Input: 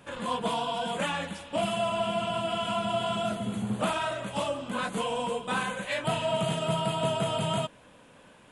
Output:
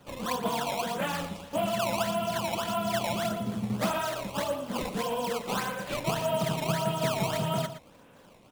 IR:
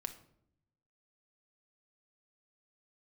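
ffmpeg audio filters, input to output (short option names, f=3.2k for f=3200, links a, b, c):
-filter_complex "[0:a]highshelf=f=4.6k:g=-11,acrossover=split=320|2500[a][b][c];[b]acrusher=samples=16:mix=1:aa=0.000001:lfo=1:lforange=25.6:lforate=1.7[d];[a][d][c]amix=inputs=3:normalize=0,asplit=2[e][f];[f]adelay=116.6,volume=-11dB,highshelf=f=4k:g=-2.62[g];[e][g]amix=inputs=2:normalize=0"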